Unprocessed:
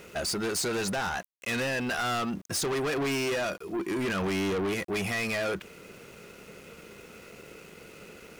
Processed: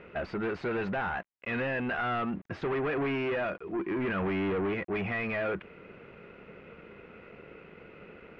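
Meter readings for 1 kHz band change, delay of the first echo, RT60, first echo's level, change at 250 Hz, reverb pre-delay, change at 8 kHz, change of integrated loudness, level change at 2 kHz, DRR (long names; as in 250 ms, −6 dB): −1.0 dB, no echo audible, no reverb audible, no echo audible, −1.0 dB, no reverb audible, below −35 dB, −2.0 dB, −2.0 dB, no reverb audible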